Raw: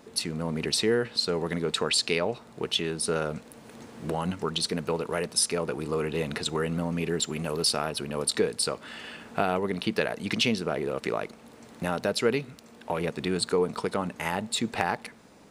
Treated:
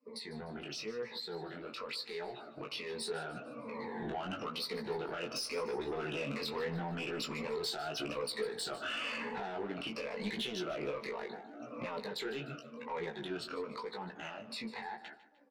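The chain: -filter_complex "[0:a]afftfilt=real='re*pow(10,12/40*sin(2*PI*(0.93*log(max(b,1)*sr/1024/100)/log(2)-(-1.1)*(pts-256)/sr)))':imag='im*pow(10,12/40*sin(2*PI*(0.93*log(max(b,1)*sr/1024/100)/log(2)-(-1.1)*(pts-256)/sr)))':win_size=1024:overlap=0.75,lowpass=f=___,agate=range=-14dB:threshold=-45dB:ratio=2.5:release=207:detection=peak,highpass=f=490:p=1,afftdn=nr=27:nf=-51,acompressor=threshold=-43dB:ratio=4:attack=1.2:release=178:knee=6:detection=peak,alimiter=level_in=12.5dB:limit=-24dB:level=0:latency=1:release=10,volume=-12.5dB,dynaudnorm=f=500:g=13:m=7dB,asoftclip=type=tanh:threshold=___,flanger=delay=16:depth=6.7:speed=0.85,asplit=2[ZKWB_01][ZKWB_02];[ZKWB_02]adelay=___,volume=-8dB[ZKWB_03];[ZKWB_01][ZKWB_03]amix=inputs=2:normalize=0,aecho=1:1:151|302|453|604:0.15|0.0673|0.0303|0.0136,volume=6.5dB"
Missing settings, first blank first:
4.8k, -36dB, 14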